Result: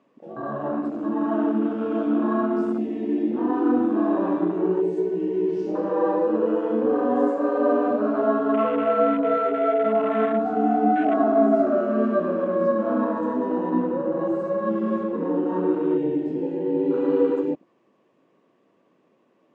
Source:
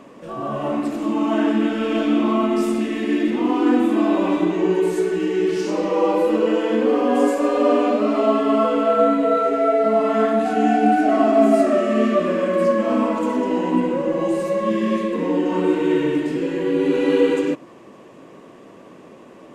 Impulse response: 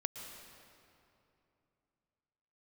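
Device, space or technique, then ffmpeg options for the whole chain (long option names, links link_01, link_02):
over-cleaned archive recording: -filter_complex "[0:a]asettb=1/sr,asplit=3[link_01][link_02][link_03];[link_01]atrim=end=11.534[link_04];[link_02]atrim=start=11.53:end=12.23,asetpts=PTS-STARTPTS,afade=type=in:duration=0.004:curve=qsin,afade=type=out:start_time=0.696:duration=0.004:curve=qsin,lowpass=frequency=7900:width=0.5412,lowpass=frequency=7900:width=1.3066[link_05];[link_03]atrim=start=12.226[link_06];[link_04][link_05]acrossfade=duration=0.004:curve1=hsin:curve2=qsin[link_07];[link_07][link_06]acrossfade=duration=0.004:curve1=qsin:curve2=hsin,highpass=120,lowpass=5800,afwtdn=0.0501,volume=-3.5dB"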